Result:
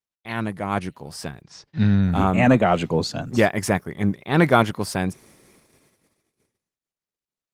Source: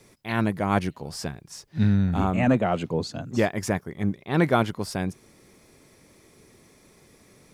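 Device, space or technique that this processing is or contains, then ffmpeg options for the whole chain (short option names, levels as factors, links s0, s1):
video call: -filter_complex "[0:a]equalizer=f=320:w=0.63:g=-3,asplit=3[s0][s1][s2];[s0]afade=t=out:st=1.41:d=0.02[s3];[s1]lowpass=f=5700:w=0.5412,lowpass=f=5700:w=1.3066,afade=t=in:st=1.41:d=0.02,afade=t=out:st=2.01:d=0.02[s4];[s2]afade=t=in:st=2.01:d=0.02[s5];[s3][s4][s5]amix=inputs=3:normalize=0,highpass=f=130:p=1,lowshelf=f=190:g=2,dynaudnorm=f=330:g=11:m=5.62,agate=range=0.00631:threshold=0.00316:ratio=16:detection=peak" -ar 48000 -c:a libopus -b:a 24k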